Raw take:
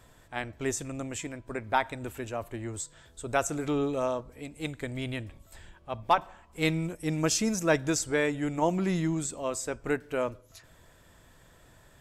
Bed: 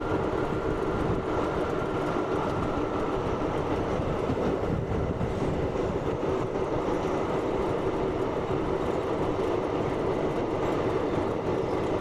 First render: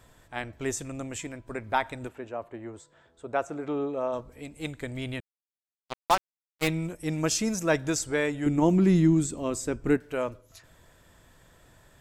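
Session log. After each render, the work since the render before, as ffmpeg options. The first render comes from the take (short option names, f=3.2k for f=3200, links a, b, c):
-filter_complex "[0:a]asplit=3[a][b][c];[a]afade=t=out:st=2.07:d=0.02[d];[b]bandpass=f=600:t=q:w=0.52,afade=t=in:st=2.07:d=0.02,afade=t=out:st=4.12:d=0.02[e];[c]afade=t=in:st=4.12:d=0.02[f];[d][e][f]amix=inputs=3:normalize=0,asettb=1/sr,asplit=3[g][h][i];[g]atrim=end=5.204[j];[h]atrim=start=5.2:end=6.68,asetpts=PTS-STARTPTS,afade=t=in:d=0.004:c=qsin,afade=t=out:st=1.476:d=0.004:c=qsin,acrusher=bits=3:mix=0:aa=0.5[k];[i]atrim=start=6.676[l];[j][k]acrossfade=d=0.004:c1=hsin:c2=qsin[m];[m][l]acrossfade=d=0.004:c1=qsin:c2=hsin,asettb=1/sr,asplit=3[n][o][p];[n]atrim=end=8.464[q];[o]atrim=start=8.46:end=9.97,asetpts=PTS-STARTPTS,afade=t=in:d=0.004:c=qsin,afade=t=out:st=1.506:d=0.004:c=qsin,lowshelf=f=440:t=q:w=1.5:g=7[r];[p]atrim=start=9.966[s];[q][r]acrossfade=d=0.004:c1=hsin:c2=qsin[t];[t][s]acrossfade=d=0.004:c1=qsin:c2=hsin"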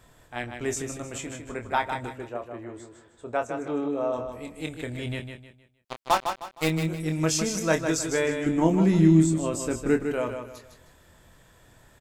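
-filter_complex "[0:a]asplit=2[a][b];[b]adelay=25,volume=-7dB[c];[a][c]amix=inputs=2:normalize=0,aecho=1:1:155|310|465|620:0.447|0.147|0.0486|0.0161"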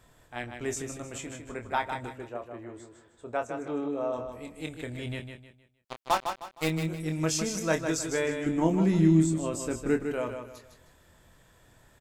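-af "volume=-3.5dB"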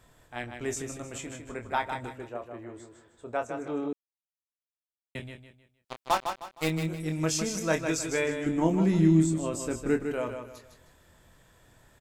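-filter_complex "[0:a]asettb=1/sr,asplit=3[a][b][c];[a]atrim=end=7.744[d];[b]atrim=start=7.74:end=8.24,asetpts=PTS-STARTPTS,afade=t=in:d=0.004:c=qsin,afade=t=out:st=0.496:d=0.004:c=qsin,equalizer=f=2.4k:w=5.2:g=7[e];[c]atrim=start=8.236[f];[d][e]acrossfade=d=0.004:c1=hsin:c2=qsin[g];[g][f]acrossfade=d=0.004:c1=qsin:c2=hsin,asplit=3[h][i][j];[h]atrim=end=3.93,asetpts=PTS-STARTPTS,afade=t=out:st=3.926:d=0.004:c=hsin[k];[i]atrim=start=3.93:end=5.15,asetpts=PTS-STARTPTS,volume=0[l];[j]atrim=start=5.15,asetpts=PTS-STARTPTS,afade=t=in:d=0.004:c=hsin[m];[k][l][m]concat=n=3:v=0:a=1"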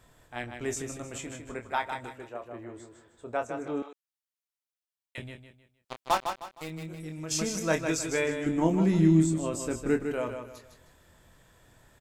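-filter_complex "[0:a]asettb=1/sr,asplit=3[a][b][c];[a]atrim=end=1.604[d];[b]atrim=start=1.6:end=2.46,asetpts=PTS-STARTPTS,afade=t=in:d=0.004:c=qsin,afade=t=out:st=0.856:d=0.004:c=qsin,lowshelf=f=380:g=-6.5[e];[c]atrim=start=2.456[f];[d][e]acrossfade=d=0.004:c1=hsin:c2=qsin[g];[g][f]acrossfade=d=0.004:c1=qsin:c2=hsin,asettb=1/sr,asplit=3[h][i][j];[h]atrim=end=3.824[k];[i]atrim=start=3.82:end=5.18,asetpts=PTS-STARTPTS,afade=t=in:d=0.004:c=qsin,afade=t=out:st=1.356:d=0.004:c=qsin,highpass=940[l];[j]atrim=start=5.176[m];[k][l]acrossfade=d=0.004:c1=hsin:c2=qsin[n];[n][m]acrossfade=d=0.004:c1=qsin:c2=hsin,asplit=3[o][p][q];[o]afade=t=out:st=6.57:d=0.02[r];[p]acompressor=threshold=-39dB:ratio=2.5:attack=3.2:release=140:knee=1:detection=peak,afade=t=in:st=6.57:d=0.02,afade=t=out:st=7.3:d=0.02[s];[q]afade=t=in:st=7.3:d=0.02[t];[r][s][t]amix=inputs=3:normalize=0"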